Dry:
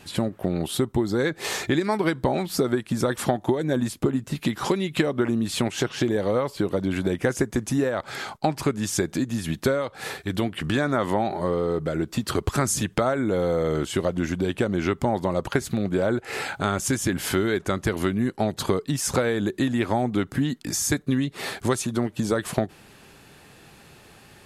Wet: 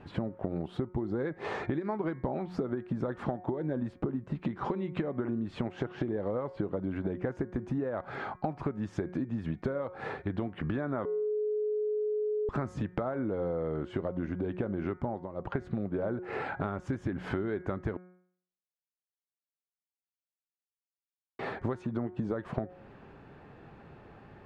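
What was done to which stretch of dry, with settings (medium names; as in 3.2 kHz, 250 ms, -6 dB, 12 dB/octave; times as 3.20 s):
11.05–12.49 s: bleep 424 Hz -22.5 dBFS
15.03–15.60 s: dip -15.5 dB, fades 0.25 s
17.97–21.39 s: mute
whole clip: low-pass 1.3 kHz 12 dB/octave; de-hum 181.4 Hz, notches 13; compression 5:1, threshold -30 dBFS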